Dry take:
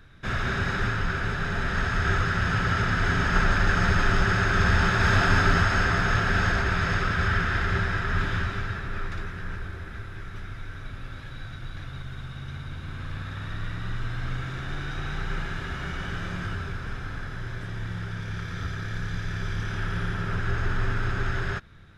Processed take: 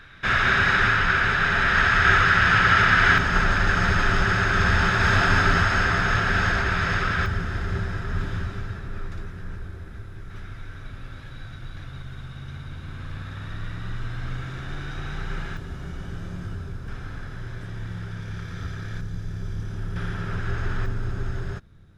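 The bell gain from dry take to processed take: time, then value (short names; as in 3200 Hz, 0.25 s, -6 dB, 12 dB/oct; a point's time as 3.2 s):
bell 2100 Hz 2.9 oct
+11.5 dB
from 3.18 s +3 dB
from 7.26 s -8 dB
from 10.3 s -2 dB
from 15.57 s -11.5 dB
from 16.88 s -4 dB
from 19.01 s -13.5 dB
from 19.96 s -2.5 dB
from 20.86 s -11 dB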